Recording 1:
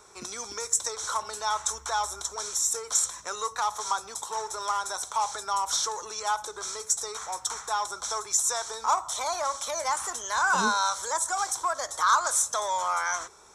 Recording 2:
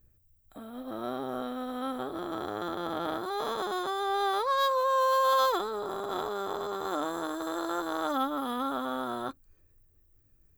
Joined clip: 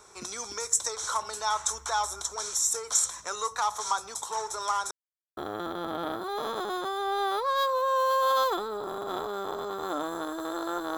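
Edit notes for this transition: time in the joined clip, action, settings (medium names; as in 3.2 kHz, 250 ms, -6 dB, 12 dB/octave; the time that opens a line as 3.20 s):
recording 1
4.91–5.37 s: mute
5.37 s: go over to recording 2 from 2.39 s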